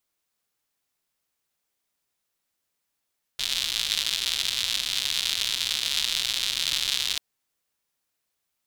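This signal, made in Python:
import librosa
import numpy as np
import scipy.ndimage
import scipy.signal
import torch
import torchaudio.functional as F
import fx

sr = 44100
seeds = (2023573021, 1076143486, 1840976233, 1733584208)

y = fx.rain(sr, seeds[0], length_s=3.79, drops_per_s=170.0, hz=3600.0, bed_db=-21.0)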